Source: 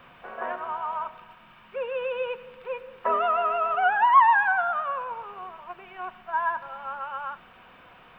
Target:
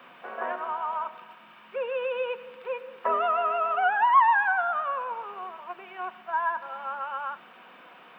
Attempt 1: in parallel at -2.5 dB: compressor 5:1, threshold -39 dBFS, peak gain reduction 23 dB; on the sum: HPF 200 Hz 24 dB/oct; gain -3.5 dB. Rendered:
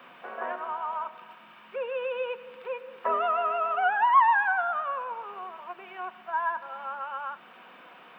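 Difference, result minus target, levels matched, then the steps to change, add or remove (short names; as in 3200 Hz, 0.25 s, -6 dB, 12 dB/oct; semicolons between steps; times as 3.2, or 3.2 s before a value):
compressor: peak gain reduction +7 dB
change: compressor 5:1, threshold -30 dBFS, peak gain reduction 16 dB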